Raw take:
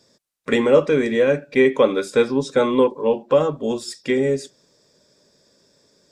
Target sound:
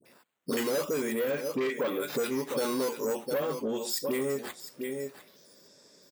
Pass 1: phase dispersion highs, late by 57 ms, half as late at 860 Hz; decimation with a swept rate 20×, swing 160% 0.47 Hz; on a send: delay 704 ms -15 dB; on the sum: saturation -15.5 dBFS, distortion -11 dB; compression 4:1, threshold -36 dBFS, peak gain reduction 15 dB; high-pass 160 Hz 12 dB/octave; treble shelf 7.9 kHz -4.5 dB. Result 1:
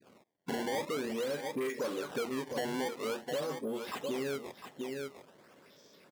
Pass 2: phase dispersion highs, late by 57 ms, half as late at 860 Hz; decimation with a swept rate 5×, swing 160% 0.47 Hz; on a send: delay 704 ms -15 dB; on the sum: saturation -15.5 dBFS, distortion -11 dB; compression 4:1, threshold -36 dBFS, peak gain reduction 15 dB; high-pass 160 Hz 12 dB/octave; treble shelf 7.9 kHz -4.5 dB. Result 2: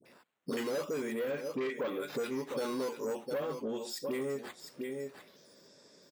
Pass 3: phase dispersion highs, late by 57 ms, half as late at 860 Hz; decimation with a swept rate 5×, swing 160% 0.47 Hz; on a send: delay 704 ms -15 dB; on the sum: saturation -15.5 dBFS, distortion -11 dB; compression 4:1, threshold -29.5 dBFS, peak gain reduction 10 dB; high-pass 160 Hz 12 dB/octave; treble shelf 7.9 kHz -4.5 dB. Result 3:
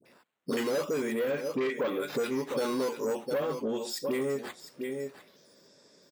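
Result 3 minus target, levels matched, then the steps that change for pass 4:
8 kHz band -4.5 dB
change: treble shelf 7.9 kHz +6.5 dB

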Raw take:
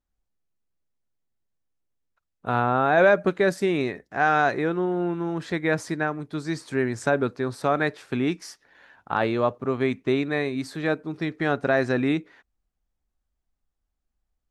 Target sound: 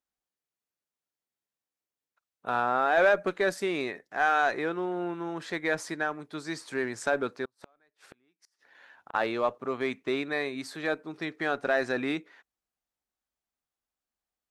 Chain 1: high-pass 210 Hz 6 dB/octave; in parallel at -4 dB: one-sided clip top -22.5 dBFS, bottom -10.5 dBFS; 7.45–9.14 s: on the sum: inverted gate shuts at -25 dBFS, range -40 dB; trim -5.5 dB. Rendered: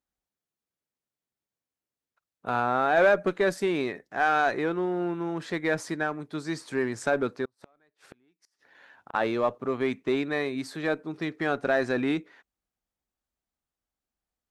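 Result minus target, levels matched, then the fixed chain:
250 Hz band +2.5 dB
high-pass 550 Hz 6 dB/octave; in parallel at -4 dB: one-sided clip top -22.5 dBFS, bottom -10.5 dBFS; 7.45–9.14 s: on the sum: inverted gate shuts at -25 dBFS, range -40 dB; trim -5.5 dB

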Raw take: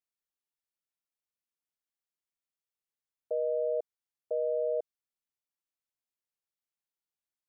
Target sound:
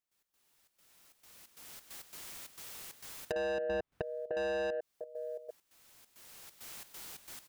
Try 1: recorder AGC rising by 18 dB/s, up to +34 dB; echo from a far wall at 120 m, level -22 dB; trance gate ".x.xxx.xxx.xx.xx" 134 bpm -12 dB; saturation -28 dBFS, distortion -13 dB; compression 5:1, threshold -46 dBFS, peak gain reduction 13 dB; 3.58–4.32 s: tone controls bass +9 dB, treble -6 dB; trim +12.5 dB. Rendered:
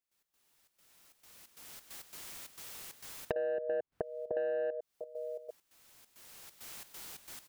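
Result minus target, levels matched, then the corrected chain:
saturation: distortion -8 dB
recorder AGC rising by 18 dB/s, up to +34 dB; echo from a far wall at 120 m, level -22 dB; trance gate ".x.xxx.xxx.xx.xx" 134 bpm -12 dB; saturation -39.5 dBFS, distortion -5 dB; compression 5:1, threshold -46 dBFS, peak gain reduction 5 dB; 3.58–4.32 s: tone controls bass +9 dB, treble -6 dB; trim +12.5 dB

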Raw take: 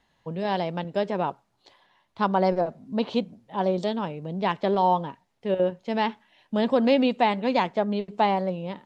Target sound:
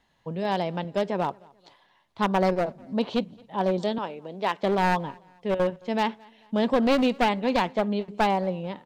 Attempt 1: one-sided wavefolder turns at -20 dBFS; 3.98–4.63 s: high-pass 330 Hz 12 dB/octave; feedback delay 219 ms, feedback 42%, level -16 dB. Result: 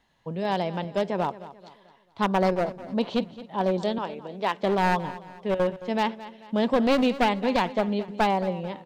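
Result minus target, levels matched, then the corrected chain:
echo-to-direct +10.5 dB
one-sided wavefolder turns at -20 dBFS; 3.98–4.63 s: high-pass 330 Hz 12 dB/octave; feedback delay 219 ms, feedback 42%, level -26.5 dB

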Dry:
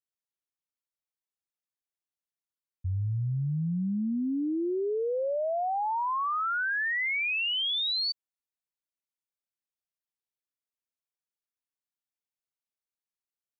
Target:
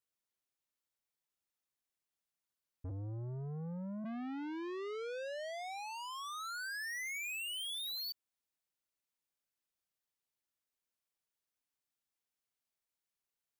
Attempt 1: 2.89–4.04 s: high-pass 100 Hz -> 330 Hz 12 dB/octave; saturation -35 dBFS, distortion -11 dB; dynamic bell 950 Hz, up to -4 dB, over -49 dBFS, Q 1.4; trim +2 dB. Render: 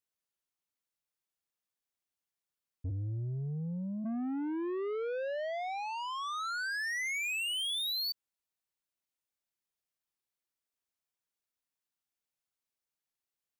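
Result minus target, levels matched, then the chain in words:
saturation: distortion -4 dB
2.89–4.04 s: high-pass 100 Hz -> 330 Hz 12 dB/octave; saturation -42.5 dBFS, distortion -8 dB; dynamic bell 950 Hz, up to -4 dB, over -49 dBFS, Q 1.4; trim +2 dB

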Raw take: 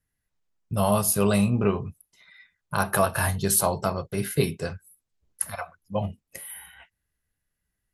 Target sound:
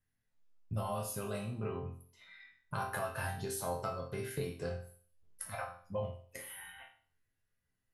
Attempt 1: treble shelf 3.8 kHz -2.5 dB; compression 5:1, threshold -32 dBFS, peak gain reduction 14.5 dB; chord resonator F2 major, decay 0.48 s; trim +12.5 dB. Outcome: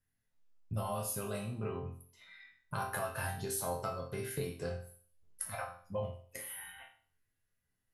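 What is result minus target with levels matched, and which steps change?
8 kHz band +3.0 dB
add after compression: treble shelf 9.6 kHz -7.5 dB

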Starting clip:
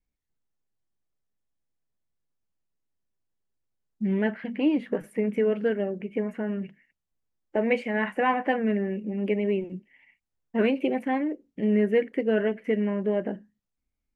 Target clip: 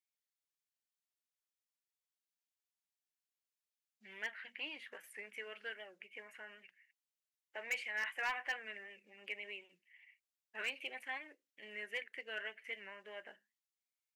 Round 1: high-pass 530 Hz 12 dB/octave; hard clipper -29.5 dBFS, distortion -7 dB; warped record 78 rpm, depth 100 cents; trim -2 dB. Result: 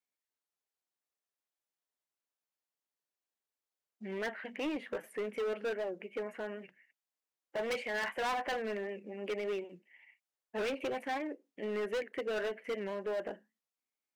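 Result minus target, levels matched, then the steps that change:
500 Hz band +11.5 dB
change: high-pass 2 kHz 12 dB/octave

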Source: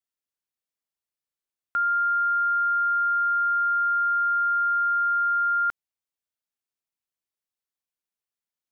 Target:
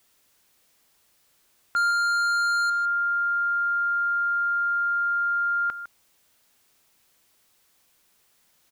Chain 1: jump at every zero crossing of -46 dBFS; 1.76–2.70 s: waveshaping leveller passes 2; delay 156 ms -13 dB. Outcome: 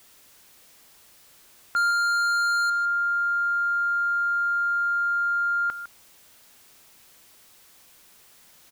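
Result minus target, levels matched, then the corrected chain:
jump at every zero crossing: distortion +10 dB
jump at every zero crossing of -56.5 dBFS; 1.76–2.70 s: waveshaping leveller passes 2; delay 156 ms -13 dB

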